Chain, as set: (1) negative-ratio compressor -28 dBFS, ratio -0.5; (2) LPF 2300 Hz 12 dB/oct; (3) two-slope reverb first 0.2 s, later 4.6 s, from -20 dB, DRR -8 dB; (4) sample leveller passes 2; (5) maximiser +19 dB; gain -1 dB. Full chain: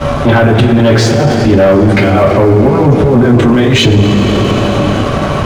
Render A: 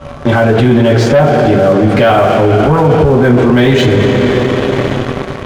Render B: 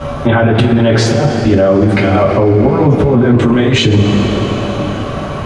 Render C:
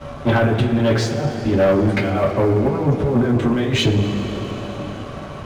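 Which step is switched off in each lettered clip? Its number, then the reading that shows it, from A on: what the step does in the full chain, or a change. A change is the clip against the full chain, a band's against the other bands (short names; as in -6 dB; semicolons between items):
1, momentary loudness spread change +2 LU; 4, momentary loudness spread change +3 LU; 5, crest factor change +4.0 dB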